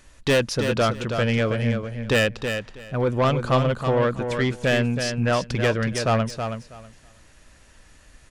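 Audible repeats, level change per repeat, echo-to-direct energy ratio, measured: 2, -15.0 dB, -7.0 dB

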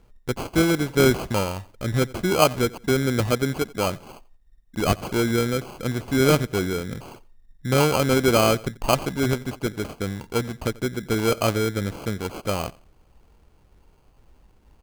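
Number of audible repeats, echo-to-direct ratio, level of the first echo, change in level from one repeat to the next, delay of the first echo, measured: 2, -21.5 dB, -22.0 dB, -12.0 dB, 88 ms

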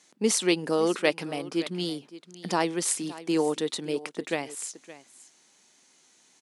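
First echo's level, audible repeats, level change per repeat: -17.0 dB, 1, no steady repeat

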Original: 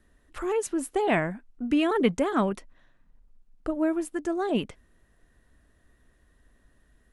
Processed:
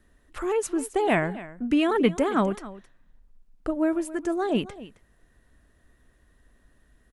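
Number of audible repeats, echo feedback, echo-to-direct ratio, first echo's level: 1, no steady repeat, -17.0 dB, -17.0 dB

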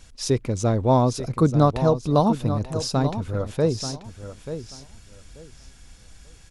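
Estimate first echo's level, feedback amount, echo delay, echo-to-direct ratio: -11.0 dB, 20%, 0.885 s, -11.0 dB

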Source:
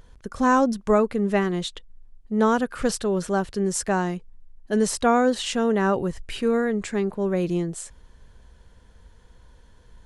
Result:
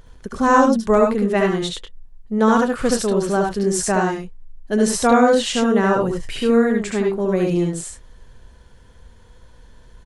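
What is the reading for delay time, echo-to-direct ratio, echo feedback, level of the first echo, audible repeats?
69 ms, -1.5 dB, no steady repeat, -5.0 dB, 1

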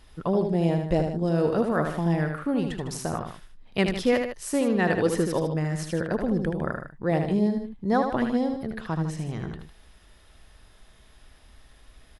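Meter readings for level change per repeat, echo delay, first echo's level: -5.5 dB, 77 ms, -6.0 dB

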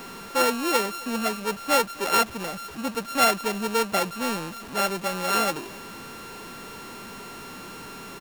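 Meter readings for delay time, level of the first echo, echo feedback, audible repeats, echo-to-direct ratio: 0.266 s, -22.5 dB, no steady repeat, 1, -22.5 dB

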